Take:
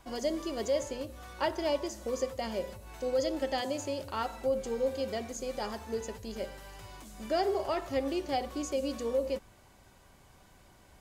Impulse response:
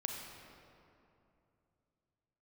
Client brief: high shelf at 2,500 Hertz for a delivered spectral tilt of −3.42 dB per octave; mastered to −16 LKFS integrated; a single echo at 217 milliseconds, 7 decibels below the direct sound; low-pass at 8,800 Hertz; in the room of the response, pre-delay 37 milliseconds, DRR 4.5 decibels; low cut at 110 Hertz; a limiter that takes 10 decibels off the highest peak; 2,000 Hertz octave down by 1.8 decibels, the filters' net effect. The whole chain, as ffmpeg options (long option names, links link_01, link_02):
-filter_complex "[0:a]highpass=110,lowpass=8800,equalizer=frequency=2000:width_type=o:gain=-4,highshelf=frequency=2500:gain=4,alimiter=level_in=4.5dB:limit=-24dB:level=0:latency=1,volume=-4.5dB,aecho=1:1:217:0.447,asplit=2[link_01][link_02];[1:a]atrim=start_sample=2205,adelay=37[link_03];[link_02][link_03]afir=irnorm=-1:irlink=0,volume=-5.5dB[link_04];[link_01][link_04]amix=inputs=2:normalize=0,volume=20.5dB"